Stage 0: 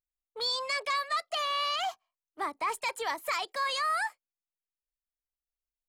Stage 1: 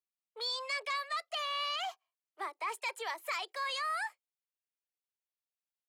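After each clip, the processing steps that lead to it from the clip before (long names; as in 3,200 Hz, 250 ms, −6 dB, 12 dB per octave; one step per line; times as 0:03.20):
Butterworth high-pass 340 Hz 72 dB per octave
parametric band 2,600 Hz +4 dB 0.98 octaves
level −6.5 dB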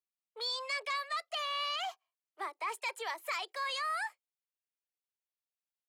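no processing that can be heard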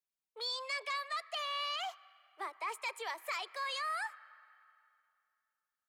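on a send at −15 dB: resonant band-pass 1,600 Hz, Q 1.5 + convolution reverb RT60 2.6 s, pre-delay 30 ms
on the sum: level −2 dB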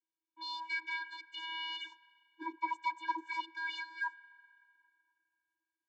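channel vocoder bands 32, square 324 Hz
high-frequency loss of the air 73 metres
level +1 dB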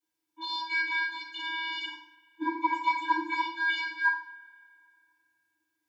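feedback delay network reverb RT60 0.53 s, low-frequency decay 1.35×, high-frequency decay 0.95×, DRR −8 dB
level +1.5 dB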